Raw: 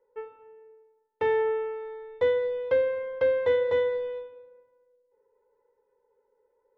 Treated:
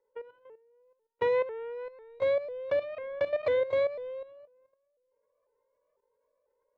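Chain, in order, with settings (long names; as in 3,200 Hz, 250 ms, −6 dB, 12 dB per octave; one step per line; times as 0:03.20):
pitch shifter swept by a sawtooth +3 semitones, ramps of 497 ms
output level in coarse steps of 13 dB
level +1 dB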